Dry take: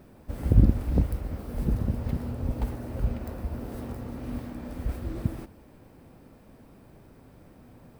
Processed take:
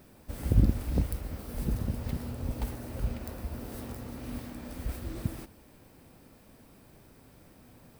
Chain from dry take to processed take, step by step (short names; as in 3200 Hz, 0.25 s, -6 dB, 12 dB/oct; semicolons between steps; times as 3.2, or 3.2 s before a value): high shelf 2300 Hz +11 dB; gain -4.5 dB